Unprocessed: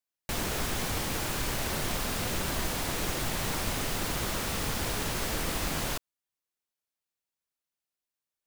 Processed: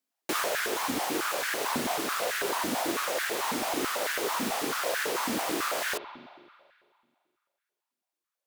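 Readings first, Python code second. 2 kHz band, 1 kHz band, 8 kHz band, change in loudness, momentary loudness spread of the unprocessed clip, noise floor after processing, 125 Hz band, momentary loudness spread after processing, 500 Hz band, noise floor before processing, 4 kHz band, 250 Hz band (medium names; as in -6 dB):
+4.5 dB, +5.5 dB, 0.0 dB, +2.0 dB, 0 LU, under -85 dBFS, -14.5 dB, 2 LU, +5.0 dB, under -85 dBFS, +0.5 dB, +2.0 dB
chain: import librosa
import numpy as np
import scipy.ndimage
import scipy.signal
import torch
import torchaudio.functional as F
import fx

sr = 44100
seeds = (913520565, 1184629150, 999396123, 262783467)

y = fx.rider(x, sr, range_db=10, speed_s=0.5)
y = fx.rev_spring(y, sr, rt60_s=2.1, pass_ms=(42,), chirp_ms=30, drr_db=9.5)
y = fx.wow_flutter(y, sr, seeds[0], rate_hz=2.1, depth_cents=26.0)
y = fx.filter_held_highpass(y, sr, hz=9.1, low_hz=250.0, high_hz=1600.0)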